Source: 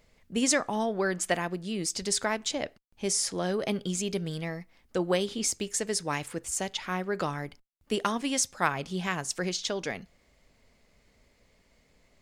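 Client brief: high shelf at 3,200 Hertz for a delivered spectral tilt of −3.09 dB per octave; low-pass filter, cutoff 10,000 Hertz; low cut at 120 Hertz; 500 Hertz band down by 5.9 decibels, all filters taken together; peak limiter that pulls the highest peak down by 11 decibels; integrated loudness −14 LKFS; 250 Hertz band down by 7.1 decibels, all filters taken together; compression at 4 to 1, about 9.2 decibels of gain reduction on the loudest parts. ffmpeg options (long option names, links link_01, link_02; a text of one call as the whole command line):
ffmpeg -i in.wav -af "highpass=120,lowpass=10000,equalizer=frequency=250:width_type=o:gain=-8,equalizer=frequency=500:width_type=o:gain=-5,highshelf=frequency=3200:gain=-4.5,acompressor=threshold=-35dB:ratio=4,volume=27dB,alimiter=limit=-2.5dB:level=0:latency=1" out.wav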